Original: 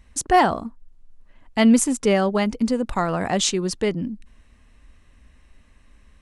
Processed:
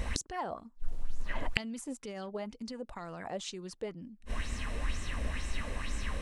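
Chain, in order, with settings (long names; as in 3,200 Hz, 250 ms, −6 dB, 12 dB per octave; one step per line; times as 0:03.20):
brickwall limiter −15 dBFS, peak gain reduction 9 dB
gate with flip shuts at −34 dBFS, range −36 dB
auto-filter bell 2.1 Hz 480–7,500 Hz +12 dB
level +17 dB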